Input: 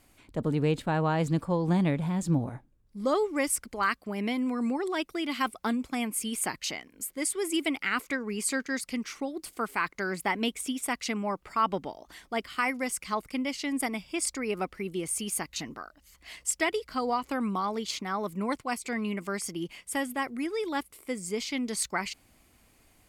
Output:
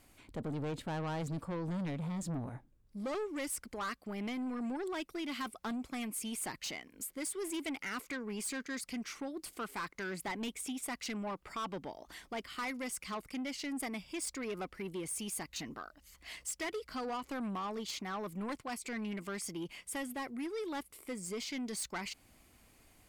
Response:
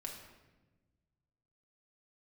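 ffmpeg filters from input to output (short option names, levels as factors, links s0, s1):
-filter_complex "[0:a]asplit=2[s0][s1];[s1]acompressor=threshold=0.0112:ratio=6,volume=0.794[s2];[s0][s2]amix=inputs=2:normalize=0,asoftclip=type=tanh:threshold=0.0422,volume=0.473"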